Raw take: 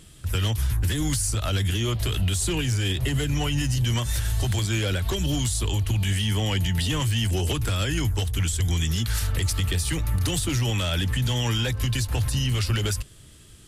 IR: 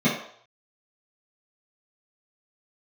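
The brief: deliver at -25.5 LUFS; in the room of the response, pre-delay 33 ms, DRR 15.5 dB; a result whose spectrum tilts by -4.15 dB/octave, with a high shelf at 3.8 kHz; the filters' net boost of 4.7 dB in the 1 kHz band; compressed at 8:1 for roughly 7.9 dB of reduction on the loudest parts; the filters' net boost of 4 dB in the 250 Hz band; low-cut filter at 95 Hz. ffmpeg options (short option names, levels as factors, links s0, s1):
-filter_complex "[0:a]highpass=95,equalizer=f=250:t=o:g=5.5,equalizer=f=1000:t=o:g=5.5,highshelf=f=3800:g=3.5,acompressor=threshold=0.0398:ratio=8,asplit=2[s0][s1];[1:a]atrim=start_sample=2205,adelay=33[s2];[s1][s2]afir=irnorm=-1:irlink=0,volume=0.0266[s3];[s0][s3]amix=inputs=2:normalize=0,volume=1.88"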